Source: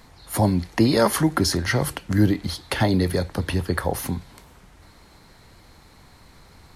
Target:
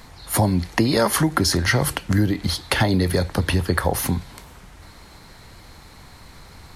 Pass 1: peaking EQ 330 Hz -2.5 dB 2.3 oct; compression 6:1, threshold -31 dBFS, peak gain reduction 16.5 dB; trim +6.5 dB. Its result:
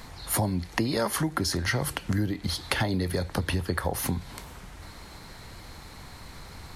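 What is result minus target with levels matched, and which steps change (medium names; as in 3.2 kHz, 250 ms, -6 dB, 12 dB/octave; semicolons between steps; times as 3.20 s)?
compression: peak gain reduction +8.5 dB
change: compression 6:1, threshold -21 dBFS, peak gain reduction 8 dB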